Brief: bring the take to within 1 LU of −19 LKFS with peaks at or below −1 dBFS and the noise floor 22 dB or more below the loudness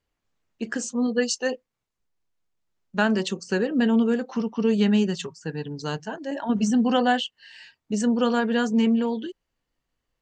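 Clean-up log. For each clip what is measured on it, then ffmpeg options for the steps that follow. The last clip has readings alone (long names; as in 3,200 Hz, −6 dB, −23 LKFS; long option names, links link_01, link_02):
integrated loudness −24.5 LKFS; sample peak −7.5 dBFS; target loudness −19.0 LKFS
→ -af "volume=5.5dB"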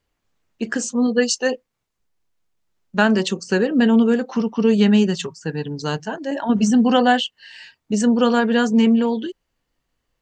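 integrated loudness −19.0 LKFS; sample peak −2.0 dBFS; background noise floor −77 dBFS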